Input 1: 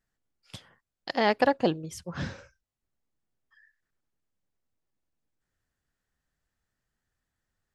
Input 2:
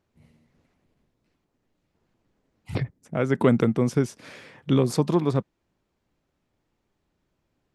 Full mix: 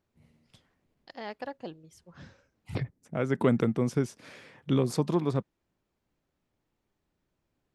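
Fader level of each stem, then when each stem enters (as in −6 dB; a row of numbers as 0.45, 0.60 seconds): −15.5, −5.0 decibels; 0.00, 0.00 seconds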